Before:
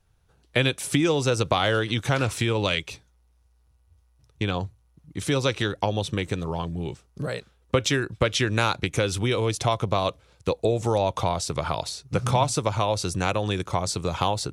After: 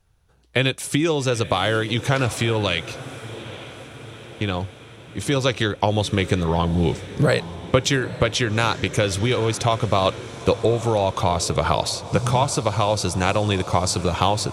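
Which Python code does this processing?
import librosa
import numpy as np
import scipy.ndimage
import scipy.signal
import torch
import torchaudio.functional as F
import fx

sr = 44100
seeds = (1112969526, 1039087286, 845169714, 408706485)

y = fx.rider(x, sr, range_db=10, speed_s=0.5)
y = fx.echo_diffused(y, sr, ms=849, feedback_pct=61, wet_db=-15.0)
y = y * librosa.db_to_amplitude(4.0)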